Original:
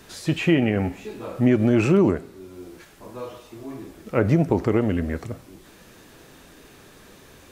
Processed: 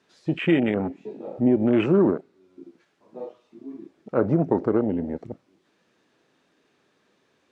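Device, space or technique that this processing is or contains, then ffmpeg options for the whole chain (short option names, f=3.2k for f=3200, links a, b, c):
over-cleaned archive recording: -af "highpass=180,lowpass=5.3k,afwtdn=0.0398"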